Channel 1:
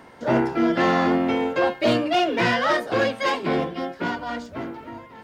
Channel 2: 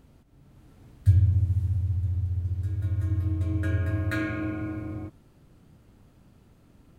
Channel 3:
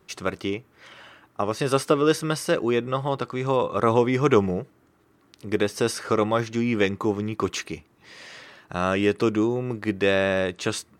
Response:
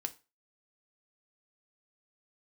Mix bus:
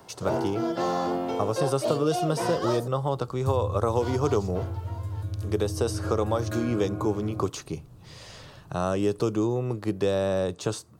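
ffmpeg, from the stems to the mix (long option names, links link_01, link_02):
-filter_complex "[0:a]bass=frequency=250:gain=-9,treble=frequency=4000:gain=5,volume=-2dB,asplit=3[link_01][link_02][link_03];[link_01]atrim=end=2.88,asetpts=PTS-STARTPTS,afade=type=out:start_time=2.876:duration=0.004:curve=hsin[link_04];[link_02]atrim=start=2.88:end=3.92,asetpts=PTS-STARTPTS,volume=0[link_05];[link_03]atrim=start=3.92,asetpts=PTS-STARTPTS,afade=type=in:duration=0.004:curve=hsin[link_06];[link_04][link_05][link_06]concat=n=3:v=0:a=1[link_07];[1:a]adelay=2400,volume=2.5dB[link_08];[2:a]volume=0.5dB,asplit=2[link_09][link_10];[link_10]volume=-12.5dB[link_11];[3:a]atrim=start_sample=2205[link_12];[link_11][link_12]afir=irnorm=-1:irlink=0[link_13];[link_07][link_08][link_09][link_13]amix=inputs=4:normalize=0,equalizer=frequency=125:width_type=o:width=1:gain=8,equalizer=frequency=250:width_type=o:width=1:gain=-6,equalizer=frequency=2000:width_type=o:width=1:gain=-11,acrossover=split=200|1500|4200[link_14][link_15][link_16][link_17];[link_14]acompressor=threshold=-34dB:ratio=4[link_18];[link_15]acompressor=threshold=-22dB:ratio=4[link_19];[link_16]acompressor=threshold=-49dB:ratio=4[link_20];[link_17]acompressor=threshold=-38dB:ratio=4[link_21];[link_18][link_19][link_20][link_21]amix=inputs=4:normalize=0"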